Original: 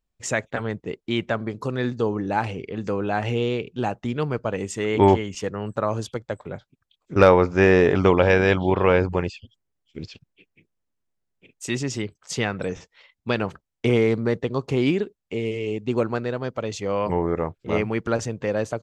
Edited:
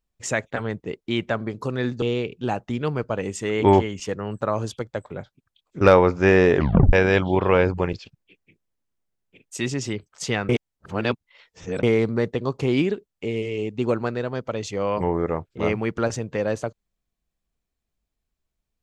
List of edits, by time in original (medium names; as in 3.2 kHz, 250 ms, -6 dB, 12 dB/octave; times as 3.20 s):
2.02–3.37 s: delete
7.91 s: tape stop 0.37 s
9.28–10.02 s: delete
12.58–13.92 s: reverse